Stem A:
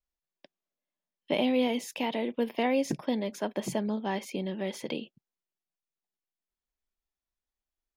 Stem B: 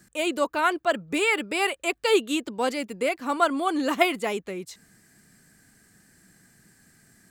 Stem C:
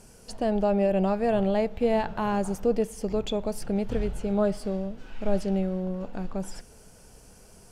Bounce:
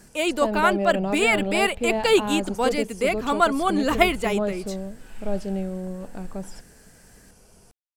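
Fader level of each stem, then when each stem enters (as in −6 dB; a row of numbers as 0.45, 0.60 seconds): muted, +2.5 dB, −1.5 dB; muted, 0.00 s, 0.00 s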